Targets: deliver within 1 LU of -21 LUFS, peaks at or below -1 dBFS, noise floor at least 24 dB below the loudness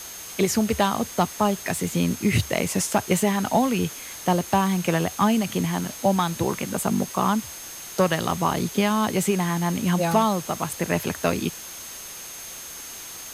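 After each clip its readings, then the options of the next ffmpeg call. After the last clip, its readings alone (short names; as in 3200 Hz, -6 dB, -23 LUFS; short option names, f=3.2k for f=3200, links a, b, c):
steady tone 6400 Hz; tone level -40 dBFS; noise floor -38 dBFS; noise floor target -48 dBFS; loudness -23.5 LUFS; peak -7.5 dBFS; loudness target -21.0 LUFS
-> -af "bandreject=f=6.4k:w=30"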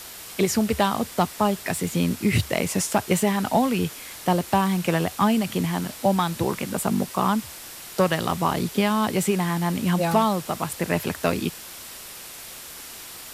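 steady tone none; noise floor -40 dBFS; noise floor target -48 dBFS
-> -af "afftdn=nr=8:nf=-40"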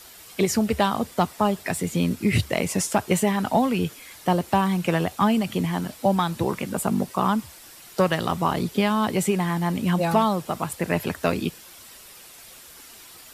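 noise floor -46 dBFS; noise floor target -48 dBFS
-> -af "afftdn=nr=6:nf=-46"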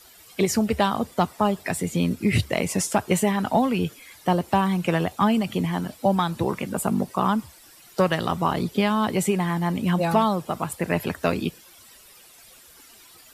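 noise floor -50 dBFS; loudness -24.0 LUFS; peak -7.5 dBFS; loudness target -21.0 LUFS
-> -af "volume=3dB"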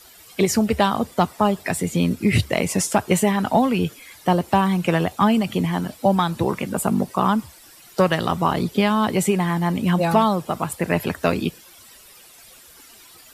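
loudness -21.0 LUFS; peak -4.5 dBFS; noise floor -47 dBFS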